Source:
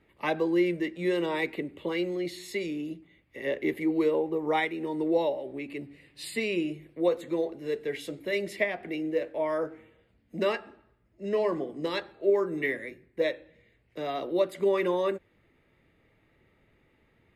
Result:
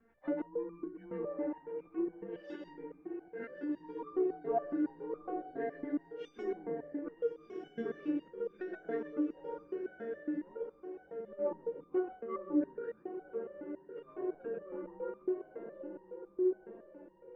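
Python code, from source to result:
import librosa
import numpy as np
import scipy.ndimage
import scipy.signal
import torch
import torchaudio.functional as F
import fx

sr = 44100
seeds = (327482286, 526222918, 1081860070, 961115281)

p1 = fx.partial_stretch(x, sr, pct=89)
p2 = scipy.signal.sosfilt(scipy.signal.butter(2, 1700.0, 'lowpass', fs=sr, output='sos'), p1)
p3 = fx.env_lowpass_down(p2, sr, base_hz=430.0, full_db=-27.5)
p4 = fx.echo_diffused(p3, sr, ms=1315, feedback_pct=42, wet_db=-7.5)
p5 = 10.0 ** (-23.5 / 20.0) * np.tanh(p4 / 10.0 ** (-23.5 / 20.0))
p6 = fx.auto_swell(p5, sr, attack_ms=128.0)
p7 = p6 + fx.echo_single(p6, sr, ms=135, db=-5.0, dry=0)
p8 = fx.resonator_held(p7, sr, hz=7.2, low_hz=230.0, high_hz=1200.0)
y = F.gain(torch.from_numpy(p8), 14.5).numpy()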